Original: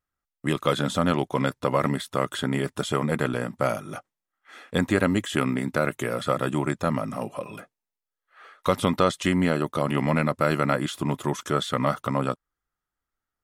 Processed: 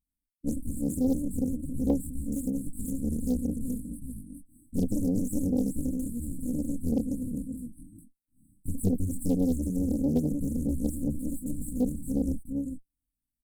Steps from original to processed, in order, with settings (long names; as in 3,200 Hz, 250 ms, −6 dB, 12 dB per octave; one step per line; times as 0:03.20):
lower of the sound and its delayed copy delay 3.8 ms
single-tap delay 410 ms −4.5 dB
multi-voice chorus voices 2, 0.73 Hz, delay 24 ms, depth 4.2 ms
linear-phase brick-wall band-stop 310–7,800 Hz
highs frequency-modulated by the lows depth 0.88 ms
level +5.5 dB